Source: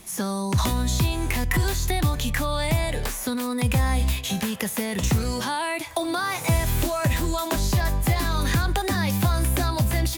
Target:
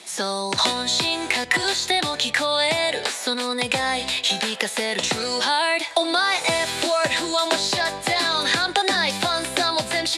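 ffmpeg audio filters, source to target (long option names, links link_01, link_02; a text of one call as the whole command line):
ffmpeg -i in.wav -af "highpass=470,equalizer=frequency=1100:width_type=q:width=4:gain=-6,equalizer=frequency=4000:width_type=q:width=4:gain=7,equalizer=frequency=6300:width_type=q:width=4:gain=-5,lowpass=frequency=8500:width=0.5412,lowpass=frequency=8500:width=1.3066,volume=7.5dB" out.wav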